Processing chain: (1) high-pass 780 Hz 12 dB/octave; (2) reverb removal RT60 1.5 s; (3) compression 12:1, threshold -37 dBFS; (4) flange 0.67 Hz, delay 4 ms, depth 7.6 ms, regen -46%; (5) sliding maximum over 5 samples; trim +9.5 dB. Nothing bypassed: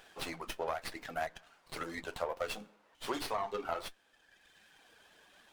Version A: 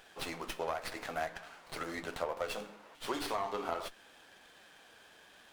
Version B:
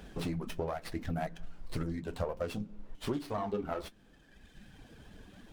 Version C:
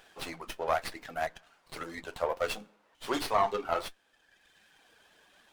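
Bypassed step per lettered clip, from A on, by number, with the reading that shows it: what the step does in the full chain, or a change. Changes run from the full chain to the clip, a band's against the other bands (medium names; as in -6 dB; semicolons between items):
2, momentary loudness spread change +11 LU; 1, 125 Hz band +19.5 dB; 3, mean gain reduction 2.5 dB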